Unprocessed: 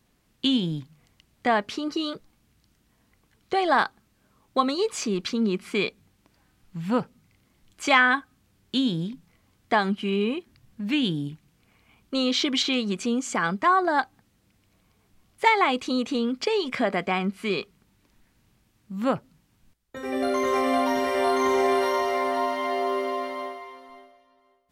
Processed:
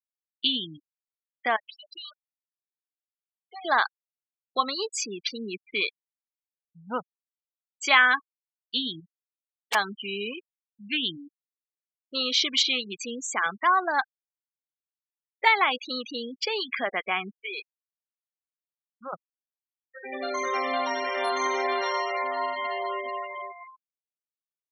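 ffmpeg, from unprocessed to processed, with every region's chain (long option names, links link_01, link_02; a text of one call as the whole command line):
ffmpeg -i in.wav -filter_complex "[0:a]asettb=1/sr,asplit=3[link_01][link_02][link_03];[link_01]atrim=end=1.564[link_04];[link_02]atrim=start=1.56:end=3.65,asetpts=PTS-STARTPTS,afade=type=in:duration=0.004:curve=qsin,afade=type=out:start_time=2.086:duration=0.004:curve=qsin,equalizer=frequency=260:width_type=o:width=1.7:gain=-11.5,acompressor=threshold=-34dB:ratio=4:attack=3.2:release=140:knee=1:detection=peak,aeval=exprs='sgn(val(0))*max(abs(val(0))-0.00299,0)':channel_layout=same[link_05];[link_03]atrim=start=3.646[link_06];[link_04][link_05]acrossfade=duration=0.004:curve1=hsin:curve2=qsin[link_07];[link_07][link_06]acrossfade=duration=0.004:curve1=qsin:curve2=hsin,asettb=1/sr,asplit=3[link_08][link_09][link_10];[link_08]atrim=end=9.004[link_11];[link_09]atrim=start=9:end=9.75,asetpts=PTS-STARTPTS,afade=type=in:duration=0.004:curve=qsin,afade=type=out:start_time=0.746:duration=0.004:curve=qsin,lowpass=frequency=1200:poles=1,equalizer=frequency=200:width=0.51:gain=-6,aeval=exprs='(mod(10.6*val(0)+1,2)-1)/10.6':channel_layout=same[link_12];[link_10]atrim=start=9.746[link_13];[link_11][link_12]acrossfade=duration=0.004:curve1=hsin:curve2=qsin[link_14];[link_14][link_13]acrossfade=duration=0.004:curve1=qsin:curve2=hsin,asettb=1/sr,asplit=3[link_15][link_16][link_17];[link_15]atrim=end=17.354[link_18];[link_16]atrim=start=17.35:end=19.13,asetpts=PTS-STARTPTS,afade=type=in:duration=0.004:curve=qsin,afade=type=out:start_time=1.776:duration=0.004:curve=qsin,highpass=330,acompressor=threshold=-31dB:ratio=2:attack=3.2:release=140:knee=1:detection=peak[link_19];[link_17]atrim=start=19.126[link_20];[link_18][link_19]acrossfade=duration=0.004:curve1=hsin:curve2=qsin[link_21];[link_21][link_20]acrossfade=duration=0.004:curve1=qsin:curve2=hsin,highpass=frequency=1500:poles=1,afftfilt=real='re*gte(hypot(re,im),0.0282)':imag='im*gte(hypot(re,im),0.0282)':win_size=1024:overlap=0.75,volume=3.5dB" out.wav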